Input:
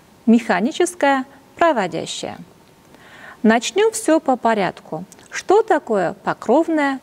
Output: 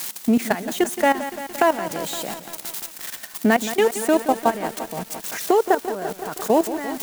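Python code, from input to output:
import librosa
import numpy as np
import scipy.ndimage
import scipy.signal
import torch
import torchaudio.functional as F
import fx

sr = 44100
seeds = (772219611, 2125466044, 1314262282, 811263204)

y = x + 0.5 * 10.0 ** (-17.5 / 20.0) * np.diff(np.sign(x), prepend=np.sign(x[:1]))
y = scipy.signal.sosfilt(scipy.signal.cheby1(3, 1.0, 160.0, 'highpass', fs=sr, output='sos'), y)
y = fx.high_shelf(y, sr, hz=2400.0, db=-2.5)
y = fx.level_steps(y, sr, step_db=15)
y = fx.echo_crushed(y, sr, ms=172, feedback_pct=80, bits=6, wet_db=-12.0)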